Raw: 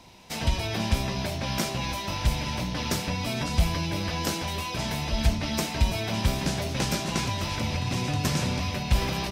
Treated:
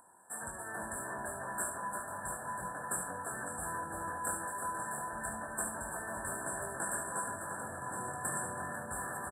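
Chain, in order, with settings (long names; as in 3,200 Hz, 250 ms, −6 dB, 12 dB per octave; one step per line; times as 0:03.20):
meter weighting curve ITU-R 468
ambience of single reflections 22 ms −5 dB, 73 ms −7.5 dB
upward compression, threshold −44 dBFS
linear-phase brick-wall band-stop 1,800–7,500 Hz
delay with a low-pass on its return 354 ms, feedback 63%, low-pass 3,800 Hz, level −3.5 dB
level −8 dB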